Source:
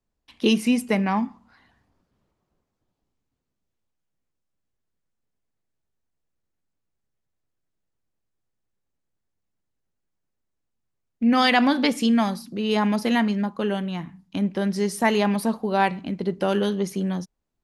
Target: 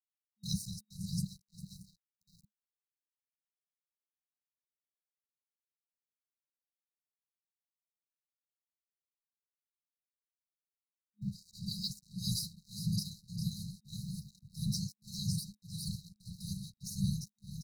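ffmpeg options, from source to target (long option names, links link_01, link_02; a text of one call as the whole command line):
ffmpeg -i in.wav -filter_complex "[0:a]aemphasis=mode=production:type=bsi,acrossover=split=6200[link_01][link_02];[link_02]acompressor=threshold=-44dB:ratio=4:attack=1:release=60[link_03];[link_01][link_03]amix=inputs=2:normalize=0,afftfilt=real='hypot(re,im)*cos(2*PI*random(0))':imag='hypot(re,im)*sin(2*PI*random(1))':win_size=512:overlap=0.75,areverse,acompressor=threshold=-34dB:ratio=16,areverse,aecho=1:1:401|802|1203|1604|2005:0.473|0.218|0.1|0.0461|0.0212,tremolo=f=1.7:d=0.91,aeval=exprs='sgn(val(0))*max(abs(val(0))-0.00188,0)':channel_layout=same,afftfilt=real='re*(1-between(b*sr/4096,210,3800))':imag='im*(1-between(b*sr/4096,210,3800))':win_size=4096:overlap=0.75,volume=10.5dB" out.wav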